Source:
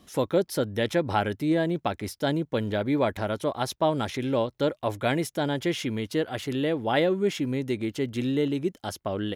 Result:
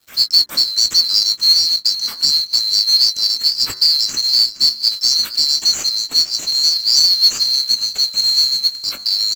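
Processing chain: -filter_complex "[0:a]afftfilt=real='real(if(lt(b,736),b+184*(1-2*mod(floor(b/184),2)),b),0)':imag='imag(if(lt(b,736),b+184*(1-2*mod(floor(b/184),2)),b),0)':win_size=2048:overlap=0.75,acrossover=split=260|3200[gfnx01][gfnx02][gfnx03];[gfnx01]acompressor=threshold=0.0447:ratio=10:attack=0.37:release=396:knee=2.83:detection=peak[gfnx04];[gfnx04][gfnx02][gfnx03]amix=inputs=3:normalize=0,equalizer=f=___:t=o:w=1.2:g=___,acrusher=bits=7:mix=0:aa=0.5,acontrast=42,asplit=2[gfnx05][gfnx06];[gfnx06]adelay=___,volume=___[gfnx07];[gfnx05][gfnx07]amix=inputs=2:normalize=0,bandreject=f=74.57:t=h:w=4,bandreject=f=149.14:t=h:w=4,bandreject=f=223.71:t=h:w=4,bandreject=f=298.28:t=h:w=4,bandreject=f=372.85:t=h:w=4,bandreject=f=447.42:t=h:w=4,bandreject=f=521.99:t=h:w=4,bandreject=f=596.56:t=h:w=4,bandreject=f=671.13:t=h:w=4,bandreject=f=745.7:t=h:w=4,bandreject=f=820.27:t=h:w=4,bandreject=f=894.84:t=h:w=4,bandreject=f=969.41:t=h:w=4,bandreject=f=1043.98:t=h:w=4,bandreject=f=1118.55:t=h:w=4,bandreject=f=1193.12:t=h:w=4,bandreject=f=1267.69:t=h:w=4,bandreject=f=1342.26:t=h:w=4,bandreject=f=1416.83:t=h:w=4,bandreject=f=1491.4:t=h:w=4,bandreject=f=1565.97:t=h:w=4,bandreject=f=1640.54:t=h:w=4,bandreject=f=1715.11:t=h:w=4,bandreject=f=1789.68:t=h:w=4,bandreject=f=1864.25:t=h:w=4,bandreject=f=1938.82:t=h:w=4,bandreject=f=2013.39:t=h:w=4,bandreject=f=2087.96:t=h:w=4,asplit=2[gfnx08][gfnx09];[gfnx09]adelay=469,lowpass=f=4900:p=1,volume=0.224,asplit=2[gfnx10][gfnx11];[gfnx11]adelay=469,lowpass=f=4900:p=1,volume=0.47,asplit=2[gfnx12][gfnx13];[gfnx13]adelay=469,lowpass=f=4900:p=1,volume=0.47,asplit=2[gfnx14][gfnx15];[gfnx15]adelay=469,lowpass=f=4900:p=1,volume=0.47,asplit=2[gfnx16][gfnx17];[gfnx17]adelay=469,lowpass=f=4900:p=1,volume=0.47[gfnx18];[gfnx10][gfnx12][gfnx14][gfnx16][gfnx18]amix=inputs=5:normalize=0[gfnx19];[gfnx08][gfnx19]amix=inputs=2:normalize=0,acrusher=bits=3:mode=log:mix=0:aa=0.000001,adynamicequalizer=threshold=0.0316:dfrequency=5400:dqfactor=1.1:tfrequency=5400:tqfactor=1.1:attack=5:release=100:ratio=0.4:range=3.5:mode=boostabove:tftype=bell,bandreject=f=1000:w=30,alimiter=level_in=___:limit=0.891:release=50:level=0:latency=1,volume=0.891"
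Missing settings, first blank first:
280, 6.5, 19, 0.355, 1.06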